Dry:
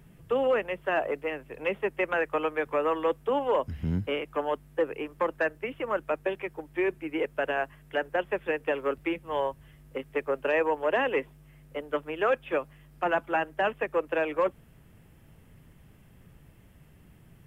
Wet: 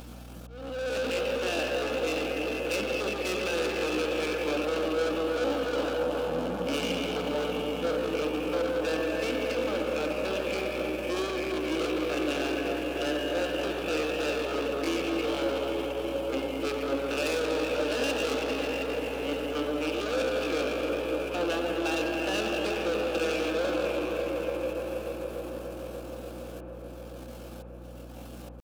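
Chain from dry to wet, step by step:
flat-topped bell 1,000 Hz −14 dB
four-comb reverb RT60 3 s, combs from 29 ms, DRR 0.5 dB
leveller curve on the samples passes 2
background noise brown −37 dBFS
soft clipping −29 dBFS, distortion −8 dB
notch filter 1,900 Hz, Q 17
tempo change 0.61×
volume swells 608 ms
high-pass filter 240 Hz 24 dB per octave
delay with a low-pass on its return 293 ms, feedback 84%, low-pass 1,100 Hz, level −7.5 dB
mains hum 60 Hz, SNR 19 dB
thirty-one-band graphic EQ 400 Hz −11 dB, 1,000 Hz −7 dB, 2,000 Hz −10 dB
level +5 dB

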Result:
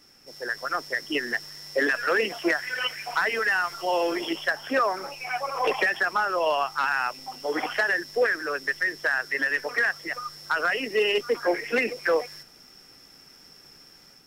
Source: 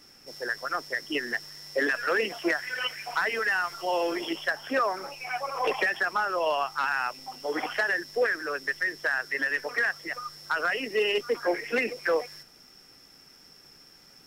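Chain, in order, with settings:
automatic gain control gain up to 4.5 dB
level −2 dB

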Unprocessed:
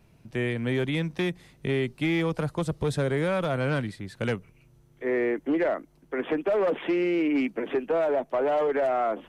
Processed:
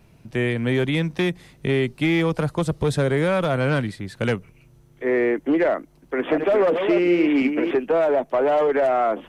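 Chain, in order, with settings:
0:05.68–0:07.71: delay that plays each chunk backwards 349 ms, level −6 dB
level +5.5 dB

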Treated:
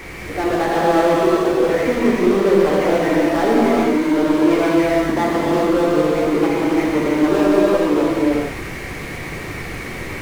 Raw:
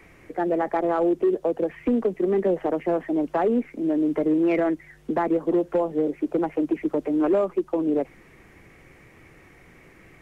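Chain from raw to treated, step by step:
power curve on the samples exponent 0.5
reverb whose tail is shaped and stops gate 490 ms flat, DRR −6.5 dB
level −2 dB

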